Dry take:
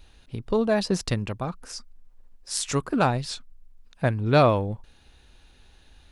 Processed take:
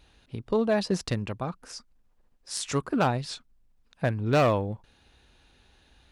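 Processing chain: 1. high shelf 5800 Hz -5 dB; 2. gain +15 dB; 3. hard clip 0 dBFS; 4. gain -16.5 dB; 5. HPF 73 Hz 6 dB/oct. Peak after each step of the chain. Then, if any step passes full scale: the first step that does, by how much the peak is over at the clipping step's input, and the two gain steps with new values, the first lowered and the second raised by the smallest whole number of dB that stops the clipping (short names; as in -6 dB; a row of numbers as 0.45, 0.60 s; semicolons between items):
-8.5, +6.5, 0.0, -16.5, -14.0 dBFS; step 2, 6.5 dB; step 2 +8 dB, step 4 -9.5 dB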